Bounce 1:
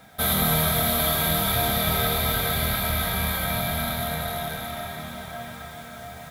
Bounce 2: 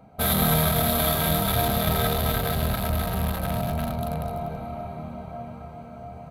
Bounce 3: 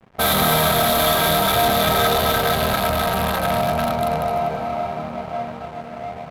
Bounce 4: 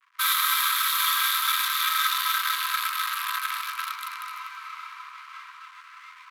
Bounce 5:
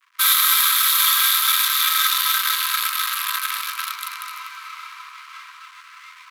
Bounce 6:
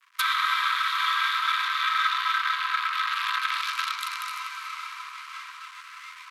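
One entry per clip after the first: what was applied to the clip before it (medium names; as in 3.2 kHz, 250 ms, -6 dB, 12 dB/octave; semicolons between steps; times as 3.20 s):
local Wiener filter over 25 samples; trim +2.5 dB
hysteresis with a dead band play -41.5 dBFS; overdrive pedal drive 21 dB, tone 5.3 kHz, clips at -7 dBFS
Chebyshev high-pass 990 Hz, order 10; trim -2.5 dB
treble shelf 2.5 kHz +10 dB
low-pass that closes with the level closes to 2.1 kHz, closed at -18 dBFS; hard clipper -12.5 dBFS, distortion -46 dB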